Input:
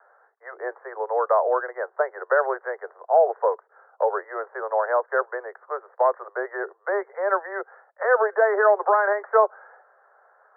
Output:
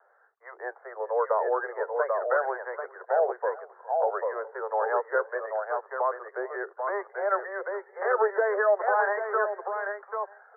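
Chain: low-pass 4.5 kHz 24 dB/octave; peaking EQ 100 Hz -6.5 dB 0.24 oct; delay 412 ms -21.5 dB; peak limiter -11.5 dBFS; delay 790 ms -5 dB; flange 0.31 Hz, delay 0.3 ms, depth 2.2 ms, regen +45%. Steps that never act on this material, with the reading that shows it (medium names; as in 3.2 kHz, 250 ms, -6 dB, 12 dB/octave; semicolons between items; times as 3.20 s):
low-pass 4.5 kHz: input has nothing above 2 kHz; peaking EQ 100 Hz: input has nothing below 340 Hz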